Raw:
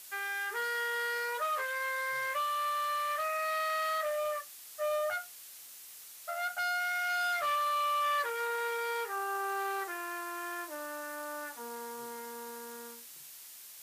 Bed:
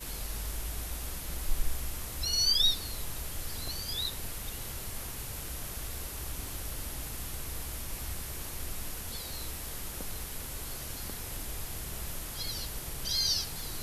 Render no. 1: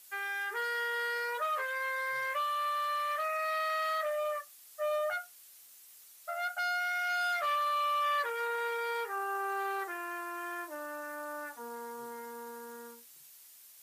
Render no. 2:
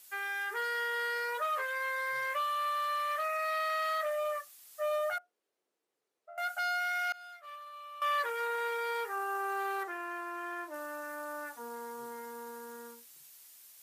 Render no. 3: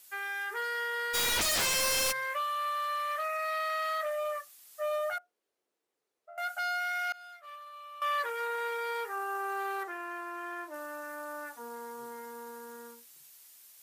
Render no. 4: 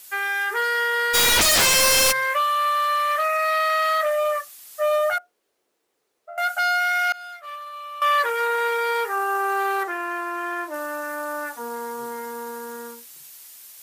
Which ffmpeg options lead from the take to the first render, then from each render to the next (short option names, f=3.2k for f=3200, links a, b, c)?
-af "afftdn=nr=8:nf=-50"
-filter_complex "[0:a]asettb=1/sr,asplit=3[a][b][c];[a]atrim=end=5.184[d];[b]atrim=start=5.18:end=6.38,asetpts=PTS-STARTPTS,afade=t=in:d=0.004:c=qsin,afade=t=out:st=1.196:d=0.004:c=qsin,bandpass=f=400:t=q:w=2.6[e];[c]atrim=start=6.376[f];[d][e]acrossfade=d=0.004:c1=hsin:c2=qsin[g];[g][f]acrossfade=d=0.004:c1=qsin:c2=hsin,asettb=1/sr,asplit=3[h][i][j];[h]atrim=end=7.124[k];[i]atrim=start=7.12:end=8.02,asetpts=PTS-STARTPTS,afade=t=in:d=0.004:c=qsin,afade=t=out:st=0.896:d=0.004:c=qsin,agate=range=-33dB:threshold=-21dB:ratio=3:release=100:detection=peak[l];[j]atrim=start=8.016[m];[k][l]acrossfade=d=0.004:c1=hsin:c2=qsin[n];[n][m]acrossfade=d=0.004:c1=qsin:c2=hsin,asettb=1/sr,asplit=3[o][p][q];[o]atrim=end=9.834[r];[p]atrim=start=9.83:end=10.74,asetpts=PTS-STARTPTS,afade=t=in:d=0.004:c=qsin,afade=t=out:st=0.906:d=0.004:c=qsin,aemphasis=mode=reproduction:type=cd[s];[q]atrim=start=10.736[t];[r][s]acrossfade=d=0.004:c1=hsin:c2=qsin[u];[u][t]acrossfade=d=0.004:c1=qsin:c2=hsin"
-filter_complex "[0:a]asplit=3[a][b][c];[a]afade=t=out:st=1.13:d=0.02[d];[b]aeval=exprs='0.0531*sin(PI/2*7.08*val(0)/0.0531)':c=same,afade=t=in:st=1.13:d=0.02,afade=t=out:st=2.11:d=0.02[e];[c]afade=t=in:st=2.11:d=0.02[f];[d][e][f]amix=inputs=3:normalize=0"
-af "volume=11.5dB"